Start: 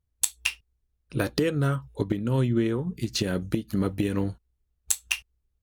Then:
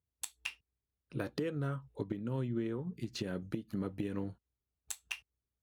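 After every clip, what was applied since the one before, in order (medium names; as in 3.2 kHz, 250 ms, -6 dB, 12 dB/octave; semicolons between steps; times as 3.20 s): high-pass 100 Hz 12 dB/octave; treble shelf 3.5 kHz -10 dB; compression 1.5:1, threshold -33 dBFS, peak gain reduction 5.5 dB; trim -6.5 dB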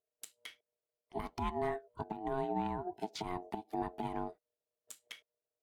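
peak limiter -27 dBFS, peak gain reduction 7.5 dB; ring modulator 540 Hz; upward expansion 1.5:1, over -49 dBFS; trim +4.5 dB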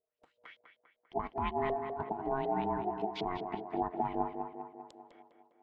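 LFO low-pass saw up 5.3 Hz 470–4000 Hz; on a send: tape echo 200 ms, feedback 64%, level -5 dB, low-pass 2 kHz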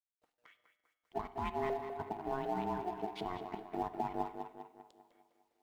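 companding laws mixed up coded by A; feedback comb 100 Hz, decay 1.9 s, mix 60%; reverberation, pre-delay 47 ms, DRR 15.5 dB; trim +5 dB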